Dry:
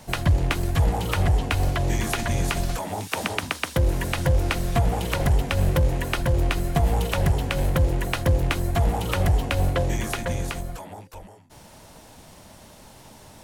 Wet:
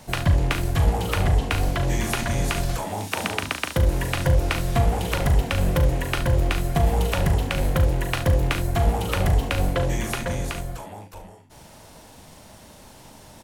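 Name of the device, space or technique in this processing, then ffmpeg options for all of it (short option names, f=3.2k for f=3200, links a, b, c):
slapback doubling: -filter_complex "[0:a]asplit=3[a][b][c];[b]adelay=39,volume=-8dB[d];[c]adelay=71,volume=-11.5dB[e];[a][d][e]amix=inputs=3:normalize=0"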